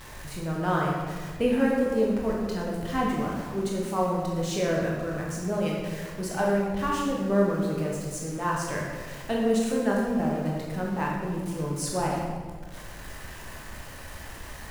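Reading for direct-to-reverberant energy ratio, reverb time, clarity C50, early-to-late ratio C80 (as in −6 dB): −3.5 dB, 1.5 s, 0.5 dB, 2.5 dB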